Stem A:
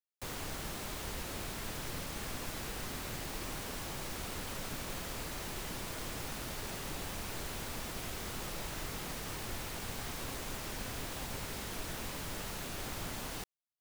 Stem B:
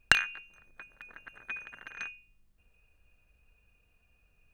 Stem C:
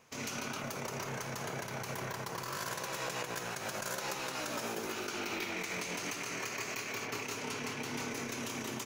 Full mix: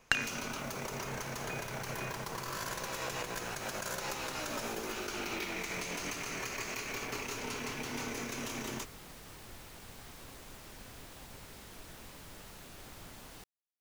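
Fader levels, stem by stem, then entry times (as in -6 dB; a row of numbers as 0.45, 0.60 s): -9.5, -7.0, -0.5 dB; 0.00, 0.00, 0.00 s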